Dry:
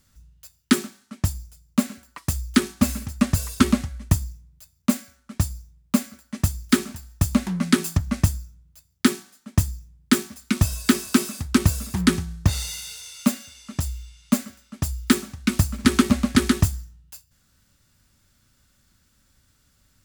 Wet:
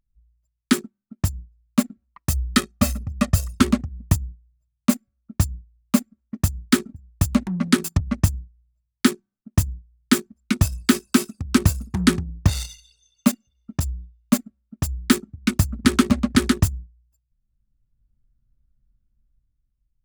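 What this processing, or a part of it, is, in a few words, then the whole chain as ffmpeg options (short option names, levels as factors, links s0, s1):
voice memo with heavy noise removal: -filter_complex "[0:a]asettb=1/sr,asplit=3[s0][s1][s2];[s0]atrim=end=2.304[s3];[s1]atrim=start=2.3:end=3.6,asetpts=PTS-STARTPTS,afade=t=in:d=0.004:c=qsin,afade=t=out:st=1.296:d=0.004:c=qsin,aecho=1:1:1.6:0.61,atrim=end_sample=57330[s4];[s2]atrim=start=3.596[s5];[s3][s4]acrossfade=d=0.004:c1=hsin:c2=qsin[s6];[s6][s5]acrossfade=d=0.004:c1=qsin:c2=hsin,anlmdn=63.1,dynaudnorm=f=210:g=9:m=2.99,volume=0.891"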